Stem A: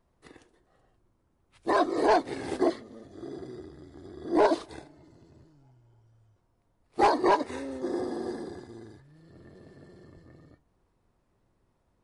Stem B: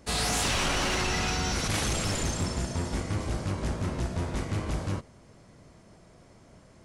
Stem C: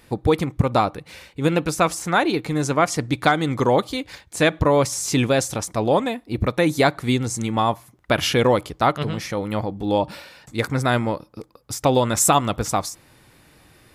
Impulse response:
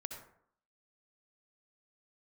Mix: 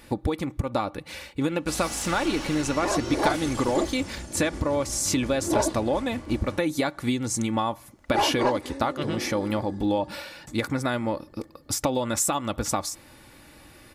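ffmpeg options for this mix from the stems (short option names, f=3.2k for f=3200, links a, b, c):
-filter_complex "[0:a]adelay=1150,volume=-3dB[a];[1:a]lowpass=f=3k:p=1,aemphasis=mode=production:type=50fm,adelay=1600,volume=-8dB[b];[2:a]acompressor=threshold=-24dB:ratio=12,volume=2dB[c];[a][b][c]amix=inputs=3:normalize=0,aecho=1:1:3.5:0.4"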